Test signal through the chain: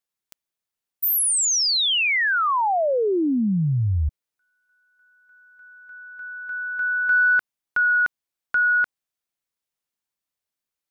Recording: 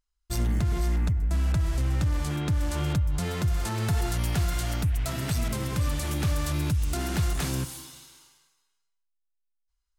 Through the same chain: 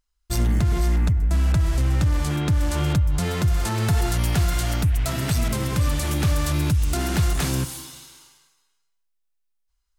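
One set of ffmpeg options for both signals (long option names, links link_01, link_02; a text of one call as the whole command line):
ffmpeg -i in.wav -af "acontrast=35" out.wav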